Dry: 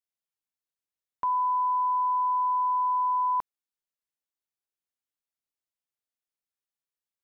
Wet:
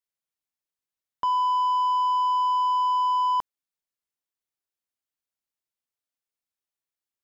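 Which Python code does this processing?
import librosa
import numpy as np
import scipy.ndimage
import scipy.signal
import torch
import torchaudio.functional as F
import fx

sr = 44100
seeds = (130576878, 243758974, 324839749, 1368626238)

y = fx.leveller(x, sr, passes=1)
y = y * 10.0 ** (2.0 / 20.0)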